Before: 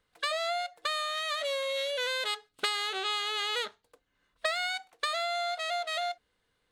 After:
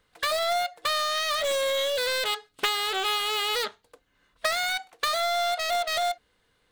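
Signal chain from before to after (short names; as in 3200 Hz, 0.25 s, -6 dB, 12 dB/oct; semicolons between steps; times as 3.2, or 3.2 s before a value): in parallel at -5 dB: wrapped overs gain 27.5 dB; on the sum: Doppler distortion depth 0.19 ms; gain +3.5 dB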